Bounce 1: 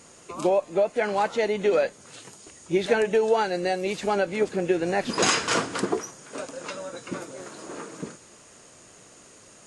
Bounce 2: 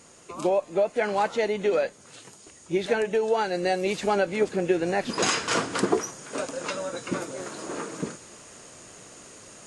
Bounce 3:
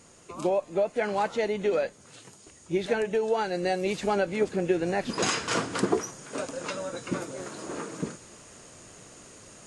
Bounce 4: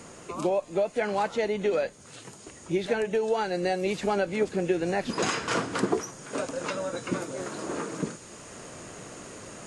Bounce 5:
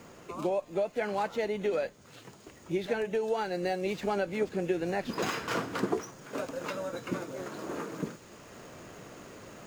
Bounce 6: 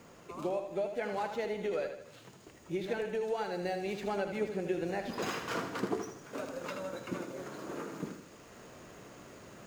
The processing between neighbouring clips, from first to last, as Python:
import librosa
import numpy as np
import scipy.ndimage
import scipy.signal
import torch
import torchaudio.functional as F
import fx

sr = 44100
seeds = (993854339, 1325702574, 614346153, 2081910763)

y1 = fx.rider(x, sr, range_db=4, speed_s=0.5)
y2 = fx.low_shelf(y1, sr, hz=170.0, db=6.5)
y2 = y2 * 10.0 ** (-3.0 / 20.0)
y3 = fx.band_squash(y2, sr, depth_pct=40)
y4 = scipy.ndimage.median_filter(y3, 5, mode='constant')
y4 = y4 * 10.0 ** (-4.0 / 20.0)
y5 = fx.echo_feedback(y4, sr, ms=79, feedback_pct=48, wet_db=-8.0)
y5 = y5 * 10.0 ** (-4.5 / 20.0)